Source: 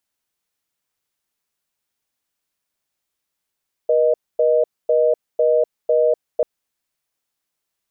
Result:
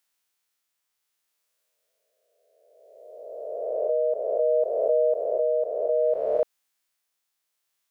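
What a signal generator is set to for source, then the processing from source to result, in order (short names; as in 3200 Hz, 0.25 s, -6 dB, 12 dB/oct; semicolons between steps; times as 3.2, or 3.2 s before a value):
call progress tone reorder tone, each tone -15.5 dBFS 2.54 s
spectral swells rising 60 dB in 1.99 s; low shelf 480 Hz -11.5 dB; tremolo 0.62 Hz, depth 29%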